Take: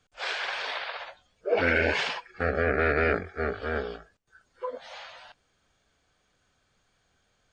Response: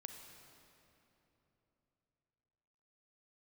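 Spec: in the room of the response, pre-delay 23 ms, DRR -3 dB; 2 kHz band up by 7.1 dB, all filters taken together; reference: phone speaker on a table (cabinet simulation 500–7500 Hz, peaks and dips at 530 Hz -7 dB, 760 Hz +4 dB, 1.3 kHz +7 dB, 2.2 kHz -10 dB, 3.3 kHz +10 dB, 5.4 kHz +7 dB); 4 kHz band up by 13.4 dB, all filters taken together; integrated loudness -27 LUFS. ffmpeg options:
-filter_complex "[0:a]equalizer=f=2000:t=o:g=9,equalizer=f=4000:t=o:g=5.5,asplit=2[s0][s1];[1:a]atrim=start_sample=2205,adelay=23[s2];[s1][s2]afir=irnorm=-1:irlink=0,volume=2.37[s3];[s0][s3]amix=inputs=2:normalize=0,highpass=f=500:w=0.5412,highpass=f=500:w=1.3066,equalizer=f=530:t=q:w=4:g=-7,equalizer=f=760:t=q:w=4:g=4,equalizer=f=1300:t=q:w=4:g=7,equalizer=f=2200:t=q:w=4:g=-10,equalizer=f=3300:t=q:w=4:g=10,equalizer=f=5400:t=q:w=4:g=7,lowpass=f=7500:w=0.5412,lowpass=f=7500:w=1.3066,volume=0.335"

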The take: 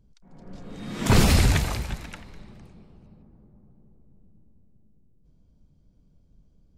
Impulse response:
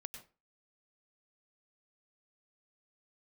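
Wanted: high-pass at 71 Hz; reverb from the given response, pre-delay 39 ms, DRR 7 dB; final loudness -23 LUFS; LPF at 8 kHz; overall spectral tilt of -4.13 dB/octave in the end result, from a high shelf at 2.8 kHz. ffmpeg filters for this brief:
-filter_complex "[0:a]highpass=71,lowpass=8000,highshelf=f=2800:g=6,asplit=2[s0][s1];[1:a]atrim=start_sample=2205,adelay=39[s2];[s1][s2]afir=irnorm=-1:irlink=0,volume=0.708[s3];[s0][s3]amix=inputs=2:normalize=0,volume=0.891"

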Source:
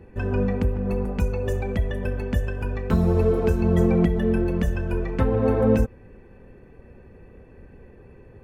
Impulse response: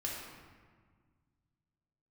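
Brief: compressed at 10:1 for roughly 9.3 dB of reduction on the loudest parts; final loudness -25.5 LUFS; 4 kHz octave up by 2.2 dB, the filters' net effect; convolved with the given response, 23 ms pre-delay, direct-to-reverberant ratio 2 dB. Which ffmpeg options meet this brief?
-filter_complex "[0:a]equalizer=f=4000:t=o:g=3,acompressor=threshold=0.0631:ratio=10,asplit=2[s0][s1];[1:a]atrim=start_sample=2205,adelay=23[s2];[s1][s2]afir=irnorm=-1:irlink=0,volume=0.631[s3];[s0][s3]amix=inputs=2:normalize=0,volume=1.19"

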